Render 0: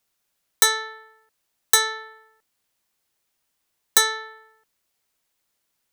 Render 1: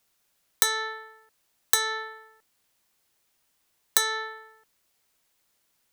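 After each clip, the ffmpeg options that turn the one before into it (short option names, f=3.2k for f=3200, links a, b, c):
-af "acompressor=threshold=-22dB:ratio=10,volume=3.5dB"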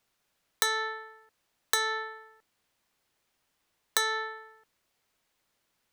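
-af "highshelf=f=5.6k:g=-10"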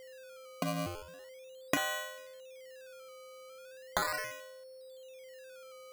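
-af "afreqshift=170,aeval=exprs='val(0)+0.00631*sin(2*PI*520*n/s)':c=same,acrusher=samples=17:mix=1:aa=0.000001:lfo=1:lforange=17:lforate=0.38,volume=-4.5dB"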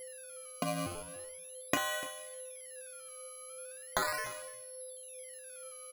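-af "aeval=exprs='val(0)+0.00398*sin(2*PI*11000*n/s)':c=same,flanger=delay=5.8:depth=2.8:regen=54:speed=0.83:shape=sinusoidal,aecho=1:1:295:0.141,volume=4dB"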